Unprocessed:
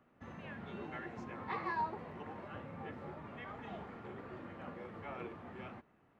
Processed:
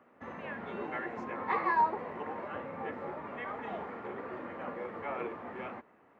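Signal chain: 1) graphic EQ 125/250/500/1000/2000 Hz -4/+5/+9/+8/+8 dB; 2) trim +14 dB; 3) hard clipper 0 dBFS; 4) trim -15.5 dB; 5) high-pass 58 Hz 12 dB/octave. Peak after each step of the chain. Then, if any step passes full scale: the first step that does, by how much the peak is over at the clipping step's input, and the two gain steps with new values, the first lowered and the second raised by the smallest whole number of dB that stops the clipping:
-16.5 dBFS, -2.5 dBFS, -2.5 dBFS, -18.0 dBFS, -18.0 dBFS; nothing clips

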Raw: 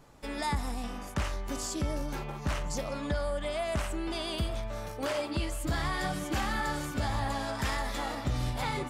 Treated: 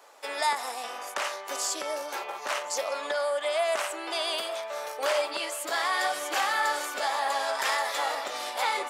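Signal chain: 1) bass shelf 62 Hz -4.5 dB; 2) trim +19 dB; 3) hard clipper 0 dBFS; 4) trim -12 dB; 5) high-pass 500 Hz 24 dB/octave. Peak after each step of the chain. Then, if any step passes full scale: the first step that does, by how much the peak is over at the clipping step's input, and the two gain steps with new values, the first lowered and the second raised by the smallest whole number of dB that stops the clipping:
-21.0 dBFS, -2.0 dBFS, -2.0 dBFS, -14.0 dBFS, -12.5 dBFS; nothing clips

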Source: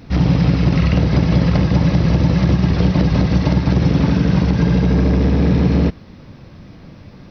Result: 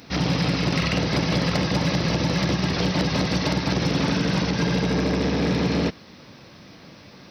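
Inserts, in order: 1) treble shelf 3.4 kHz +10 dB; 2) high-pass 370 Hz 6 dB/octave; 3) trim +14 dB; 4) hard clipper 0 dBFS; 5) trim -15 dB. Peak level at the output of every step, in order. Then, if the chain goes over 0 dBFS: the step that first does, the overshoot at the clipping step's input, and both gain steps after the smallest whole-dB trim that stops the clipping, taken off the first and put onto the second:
-2.0 dBFS, -6.5 dBFS, +7.5 dBFS, 0.0 dBFS, -15.0 dBFS; step 3, 7.5 dB; step 3 +6 dB, step 5 -7 dB

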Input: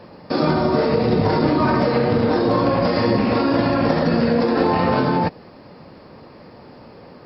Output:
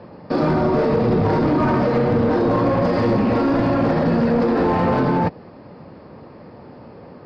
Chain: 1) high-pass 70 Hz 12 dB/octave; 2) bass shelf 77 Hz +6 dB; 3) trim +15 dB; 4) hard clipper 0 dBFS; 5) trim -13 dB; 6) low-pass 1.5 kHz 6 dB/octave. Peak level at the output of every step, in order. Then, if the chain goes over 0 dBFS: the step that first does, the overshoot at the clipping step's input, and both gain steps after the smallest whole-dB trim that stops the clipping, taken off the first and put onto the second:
-5.0 dBFS, -5.0 dBFS, +10.0 dBFS, 0.0 dBFS, -13.0 dBFS, -13.0 dBFS; step 3, 10.0 dB; step 3 +5 dB, step 5 -3 dB

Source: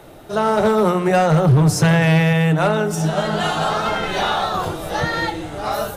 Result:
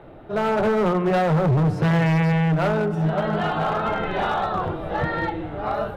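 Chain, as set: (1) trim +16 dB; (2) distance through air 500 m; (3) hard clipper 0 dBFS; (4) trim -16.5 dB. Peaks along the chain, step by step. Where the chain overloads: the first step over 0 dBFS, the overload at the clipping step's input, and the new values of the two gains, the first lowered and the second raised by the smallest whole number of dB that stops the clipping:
+7.5 dBFS, +7.0 dBFS, 0.0 dBFS, -16.5 dBFS; step 1, 7.0 dB; step 1 +9 dB, step 4 -9.5 dB

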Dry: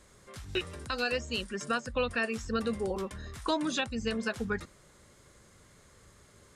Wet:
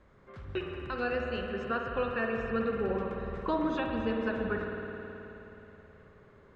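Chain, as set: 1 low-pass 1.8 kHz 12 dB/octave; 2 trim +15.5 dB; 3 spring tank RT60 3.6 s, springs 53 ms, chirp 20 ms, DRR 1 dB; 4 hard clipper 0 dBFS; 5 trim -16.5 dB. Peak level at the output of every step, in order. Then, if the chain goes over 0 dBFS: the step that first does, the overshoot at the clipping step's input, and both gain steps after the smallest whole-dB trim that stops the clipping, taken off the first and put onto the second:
-20.5 dBFS, -5.0 dBFS, -2.5 dBFS, -2.5 dBFS, -19.0 dBFS; nothing clips

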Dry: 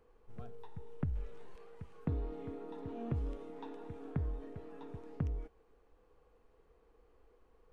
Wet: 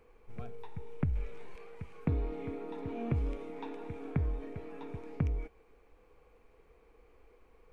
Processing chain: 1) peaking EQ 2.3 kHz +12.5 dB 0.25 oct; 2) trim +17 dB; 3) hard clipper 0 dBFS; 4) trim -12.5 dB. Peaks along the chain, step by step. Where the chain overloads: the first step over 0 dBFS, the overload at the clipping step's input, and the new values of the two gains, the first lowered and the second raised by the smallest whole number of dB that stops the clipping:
-22.5 dBFS, -5.5 dBFS, -5.5 dBFS, -18.0 dBFS; nothing clips

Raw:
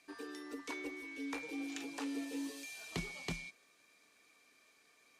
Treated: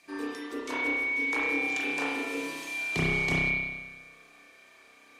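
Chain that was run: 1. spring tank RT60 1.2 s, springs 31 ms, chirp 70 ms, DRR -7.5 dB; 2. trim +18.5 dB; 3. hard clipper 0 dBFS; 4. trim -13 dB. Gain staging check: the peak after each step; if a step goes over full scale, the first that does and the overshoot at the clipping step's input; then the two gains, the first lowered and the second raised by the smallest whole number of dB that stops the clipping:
-21.0 dBFS, -2.5 dBFS, -2.5 dBFS, -15.5 dBFS; nothing clips

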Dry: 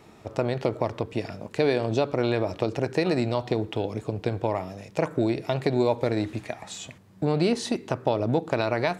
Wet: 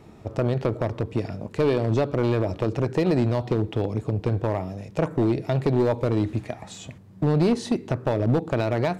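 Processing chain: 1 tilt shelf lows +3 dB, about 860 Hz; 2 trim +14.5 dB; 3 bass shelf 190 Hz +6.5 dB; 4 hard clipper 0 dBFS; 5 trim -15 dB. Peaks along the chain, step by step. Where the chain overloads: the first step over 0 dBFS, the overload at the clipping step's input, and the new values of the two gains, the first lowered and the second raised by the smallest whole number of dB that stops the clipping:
-7.5 dBFS, +7.0 dBFS, +8.5 dBFS, 0.0 dBFS, -15.0 dBFS; step 2, 8.5 dB; step 2 +5.5 dB, step 5 -6 dB

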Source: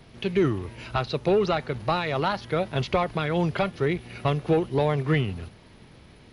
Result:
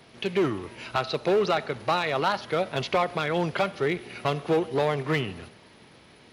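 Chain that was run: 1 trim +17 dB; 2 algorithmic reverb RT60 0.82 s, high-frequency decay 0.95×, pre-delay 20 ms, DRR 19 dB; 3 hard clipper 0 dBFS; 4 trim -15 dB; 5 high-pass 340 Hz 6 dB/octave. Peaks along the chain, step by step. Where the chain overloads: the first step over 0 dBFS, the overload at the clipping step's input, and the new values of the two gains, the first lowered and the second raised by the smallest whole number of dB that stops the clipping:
+5.0 dBFS, +5.0 dBFS, 0.0 dBFS, -15.0 dBFS, -12.0 dBFS; step 1, 5.0 dB; step 1 +12 dB, step 4 -10 dB

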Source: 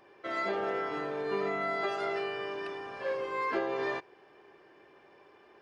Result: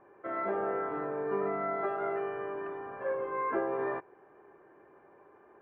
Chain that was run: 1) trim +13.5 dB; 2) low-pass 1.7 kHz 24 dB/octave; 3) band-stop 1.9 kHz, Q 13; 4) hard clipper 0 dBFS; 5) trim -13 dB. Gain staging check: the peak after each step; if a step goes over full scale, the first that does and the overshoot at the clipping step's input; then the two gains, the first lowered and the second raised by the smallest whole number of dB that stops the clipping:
-6.0 dBFS, -6.0 dBFS, -6.0 dBFS, -6.0 dBFS, -19.0 dBFS; nothing clips

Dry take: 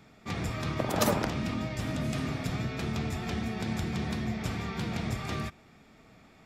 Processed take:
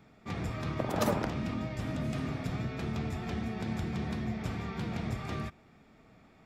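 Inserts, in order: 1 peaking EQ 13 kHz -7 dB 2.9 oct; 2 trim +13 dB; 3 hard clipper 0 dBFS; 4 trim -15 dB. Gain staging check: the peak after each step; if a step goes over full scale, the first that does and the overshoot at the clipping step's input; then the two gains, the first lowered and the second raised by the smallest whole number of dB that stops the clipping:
-15.0 dBFS, -2.0 dBFS, -2.0 dBFS, -17.0 dBFS; nothing clips

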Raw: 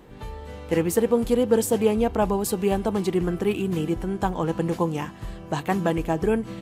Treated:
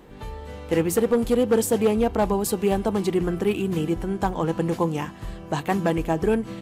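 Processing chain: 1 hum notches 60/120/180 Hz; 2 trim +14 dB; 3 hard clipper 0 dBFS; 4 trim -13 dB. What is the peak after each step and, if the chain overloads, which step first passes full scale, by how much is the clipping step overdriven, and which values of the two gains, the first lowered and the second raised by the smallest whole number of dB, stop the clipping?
-8.0 dBFS, +6.0 dBFS, 0.0 dBFS, -13.0 dBFS; step 2, 6.0 dB; step 2 +8 dB, step 4 -7 dB

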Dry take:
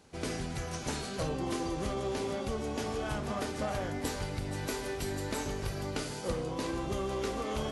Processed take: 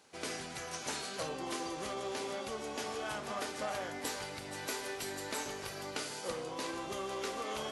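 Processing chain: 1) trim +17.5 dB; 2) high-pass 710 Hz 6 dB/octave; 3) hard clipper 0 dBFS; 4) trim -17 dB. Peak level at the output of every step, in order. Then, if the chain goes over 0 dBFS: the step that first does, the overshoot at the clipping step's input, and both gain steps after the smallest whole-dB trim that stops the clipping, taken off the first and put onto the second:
-4.5 dBFS, -4.5 dBFS, -4.5 dBFS, -21.5 dBFS; nothing clips

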